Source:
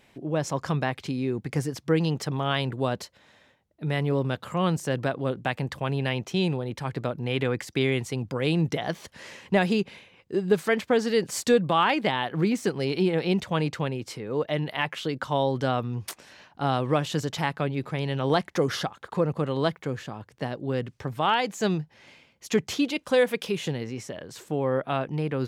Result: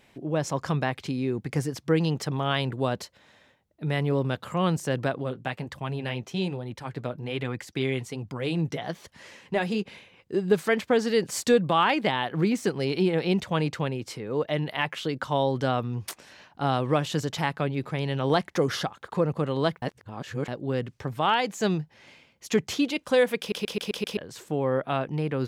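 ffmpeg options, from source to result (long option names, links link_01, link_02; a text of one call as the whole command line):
ffmpeg -i in.wav -filter_complex "[0:a]asplit=3[link_01][link_02][link_03];[link_01]afade=type=out:start_time=5.22:duration=0.02[link_04];[link_02]flanger=delay=0.9:depth=7:regen=-45:speed=1.2:shape=sinusoidal,afade=type=in:start_time=5.22:duration=0.02,afade=type=out:start_time=9.85:duration=0.02[link_05];[link_03]afade=type=in:start_time=9.85:duration=0.02[link_06];[link_04][link_05][link_06]amix=inputs=3:normalize=0,asplit=9[link_07][link_08][link_09][link_10][link_11][link_12][link_13][link_14][link_15];[link_07]atrim=end=19.822[link_16];[link_08]atrim=start=19.818:end=20.482,asetpts=PTS-STARTPTS,areverse[link_17];[link_09]atrim=start=20.478:end=23.522[link_18];[link_10]atrim=start=23.388:end=23.522[link_19];[link_11]atrim=start=23.388:end=23.522[link_20];[link_12]atrim=start=23.388:end=23.522[link_21];[link_13]atrim=start=23.388:end=23.522[link_22];[link_14]atrim=start=23.388:end=23.522[link_23];[link_15]atrim=start=24.168[link_24];[link_16][link_17]acrossfade=duration=0.004:curve1=hsin:curve2=hsin[link_25];[link_25][link_18]acrossfade=duration=0.004:curve1=hsin:curve2=hsin[link_26];[link_26][link_19]acrossfade=duration=0.004:curve1=hsin:curve2=hsin[link_27];[link_27][link_20]acrossfade=duration=0.004:curve1=hsin:curve2=hsin[link_28];[link_28][link_21]acrossfade=duration=0.004:curve1=hsin:curve2=hsin[link_29];[link_29][link_22]acrossfade=duration=0.004:curve1=hsin:curve2=hsin[link_30];[link_30][link_23]acrossfade=duration=0.004:curve1=hsin:curve2=hsin[link_31];[link_31][link_24]acrossfade=duration=0.004:curve1=hsin:curve2=hsin" out.wav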